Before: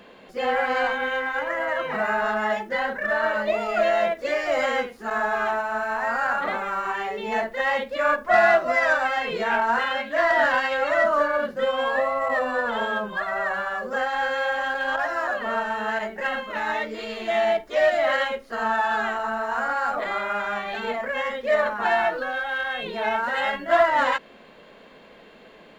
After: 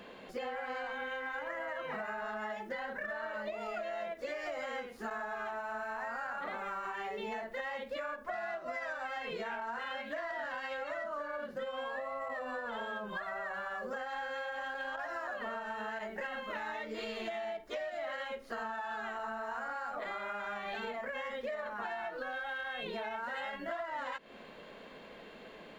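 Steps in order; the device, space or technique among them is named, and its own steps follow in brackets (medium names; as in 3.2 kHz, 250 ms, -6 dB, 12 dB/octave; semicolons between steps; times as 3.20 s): serial compression, peaks first (compression, threshold -30 dBFS, peak gain reduction 15.5 dB; compression 2.5:1, threshold -35 dBFS, peak gain reduction 6 dB); trim -2.5 dB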